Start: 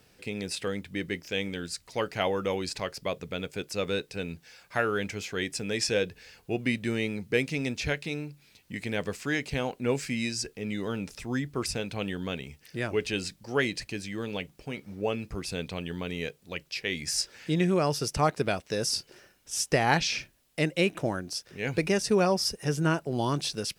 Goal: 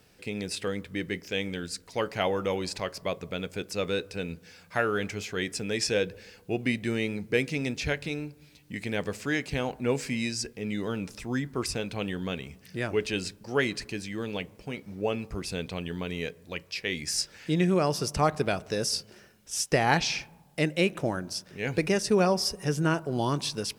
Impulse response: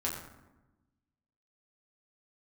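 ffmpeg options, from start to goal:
-filter_complex "[0:a]asplit=2[s0][s1];[1:a]atrim=start_sample=2205,asetrate=32634,aresample=44100,lowpass=2300[s2];[s1][s2]afir=irnorm=-1:irlink=0,volume=0.0631[s3];[s0][s3]amix=inputs=2:normalize=0"

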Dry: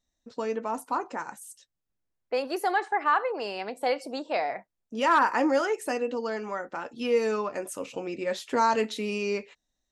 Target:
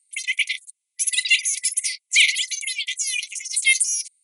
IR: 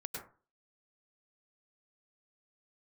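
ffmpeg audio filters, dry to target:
-filter_complex "[0:a]aexciter=amount=5:drive=5.9:freq=3100,asplit=2[s0][s1];[s1]alimiter=limit=0.0891:level=0:latency=1:release=28,volume=1[s2];[s0][s2]amix=inputs=2:normalize=0,afftfilt=real='re*between(b*sr/4096,840,4600)':imag='im*between(b*sr/4096,840,4600)':win_size=4096:overlap=0.75,asetrate=103194,aresample=44100,volume=1.78"

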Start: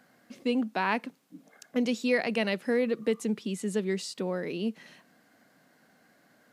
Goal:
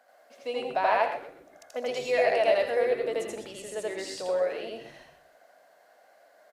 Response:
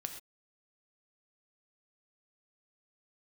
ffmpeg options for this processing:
-filter_complex "[0:a]highpass=f=630:t=q:w=4.9,asplit=5[s0][s1][s2][s3][s4];[s1]adelay=126,afreqshift=-100,volume=0.2[s5];[s2]adelay=252,afreqshift=-200,volume=0.0741[s6];[s3]adelay=378,afreqshift=-300,volume=0.0272[s7];[s4]adelay=504,afreqshift=-400,volume=0.0101[s8];[s0][s5][s6][s7][s8]amix=inputs=5:normalize=0,asplit=2[s9][s10];[1:a]atrim=start_sample=2205,adelay=82[s11];[s10][s11]afir=irnorm=-1:irlink=0,volume=1.5[s12];[s9][s12]amix=inputs=2:normalize=0,volume=0.562"

